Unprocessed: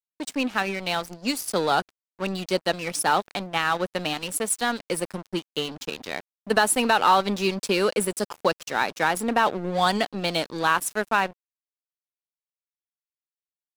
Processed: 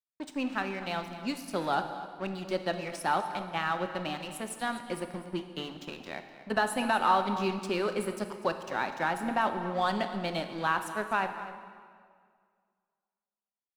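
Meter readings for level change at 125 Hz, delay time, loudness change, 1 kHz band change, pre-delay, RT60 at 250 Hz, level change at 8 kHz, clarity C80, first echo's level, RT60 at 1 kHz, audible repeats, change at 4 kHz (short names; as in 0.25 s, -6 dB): -5.5 dB, 0.248 s, -7.0 dB, -6.0 dB, 20 ms, 2.1 s, -16.0 dB, 9.0 dB, -15.0 dB, 1.9 s, 1, -10.5 dB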